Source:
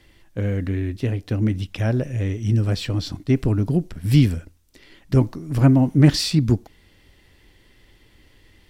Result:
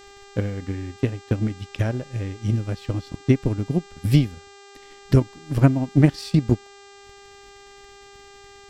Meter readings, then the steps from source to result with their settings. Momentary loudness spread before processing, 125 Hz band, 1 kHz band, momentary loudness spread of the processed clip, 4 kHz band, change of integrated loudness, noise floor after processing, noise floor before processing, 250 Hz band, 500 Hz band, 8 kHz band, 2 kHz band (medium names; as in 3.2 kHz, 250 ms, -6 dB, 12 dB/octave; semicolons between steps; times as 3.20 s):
10 LU, -2.5 dB, -0.5 dB, 10 LU, -8.0 dB, -2.5 dB, -47 dBFS, -56 dBFS, -2.5 dB, -0.5 dB, no reading, -1.5 dB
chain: transient shaper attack +11 dB, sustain -9 dB; mains buzz 400 Hz, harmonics 20, -40 dBFS -4 dB/octave; trim -7 dB